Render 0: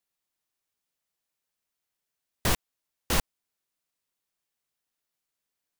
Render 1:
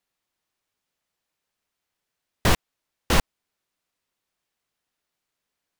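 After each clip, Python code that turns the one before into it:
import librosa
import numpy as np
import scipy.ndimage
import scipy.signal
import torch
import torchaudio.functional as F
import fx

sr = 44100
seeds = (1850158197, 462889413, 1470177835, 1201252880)

y = fx.high_shelf(x, sr, hz=6300.0, db=-9.5)
y = y * 10.0 ** (7.0 / 20.0)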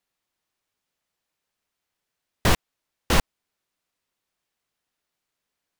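y = x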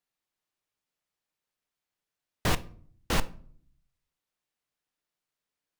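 y = fx.room_shoebox(x, sr, seeds[0], volume_m3=620.0, walls='furnished', distance_m=0.46)
y = y * 10.0 ** (-7.0 / 20.0)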